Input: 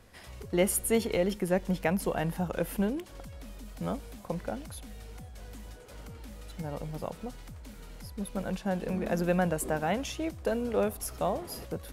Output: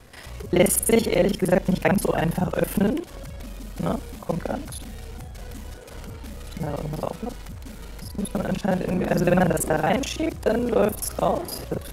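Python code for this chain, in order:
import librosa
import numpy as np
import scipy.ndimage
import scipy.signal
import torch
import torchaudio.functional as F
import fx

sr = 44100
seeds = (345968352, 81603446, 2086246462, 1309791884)

y = fx.local_reverse(x, sr, ms=33.0)
y = y * 10.0 ** (8.5 / 20.0)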